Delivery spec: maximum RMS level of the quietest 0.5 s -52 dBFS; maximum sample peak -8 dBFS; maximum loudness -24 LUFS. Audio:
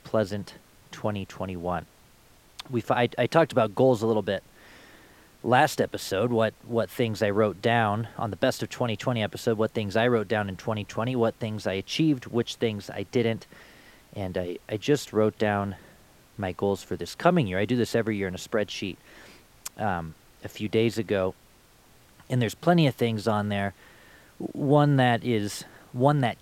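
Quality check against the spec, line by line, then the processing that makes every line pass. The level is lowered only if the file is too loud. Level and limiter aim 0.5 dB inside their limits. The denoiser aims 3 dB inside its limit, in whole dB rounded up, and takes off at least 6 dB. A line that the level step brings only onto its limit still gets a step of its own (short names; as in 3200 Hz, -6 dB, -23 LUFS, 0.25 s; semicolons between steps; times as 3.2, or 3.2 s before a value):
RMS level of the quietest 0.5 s -57 dBFS: OK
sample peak -4.5 dBFS: fail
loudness -26.5 LUFS: OK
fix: limiter -8.5 dBFS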